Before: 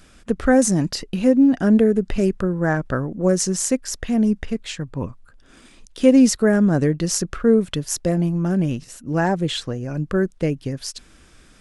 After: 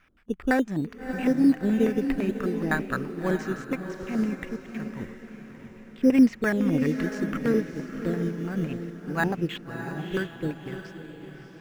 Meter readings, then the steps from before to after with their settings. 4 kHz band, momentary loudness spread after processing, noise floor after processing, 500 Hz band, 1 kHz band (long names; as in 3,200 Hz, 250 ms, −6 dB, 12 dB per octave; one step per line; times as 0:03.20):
−13.0 dB, 18 LU, −47 dBFS, −9.0 dB, −5.5 dB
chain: low shelf with overshoot 720 Hz −6 dB, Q 1.5
auto-filter low-pass square 5.9 Hz 370–2,300 Hz
in parallel at −11.5 dB: sample-and-hold swept by an LFO 11×, swing 60% 0.62 Hz
on the sum: feedback delay with all-pass diffusion 644 ms, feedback 53%, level −5.5 dB
expander for the loud parts 1.5 to 1, over −30 dBFS
level −2.5 dB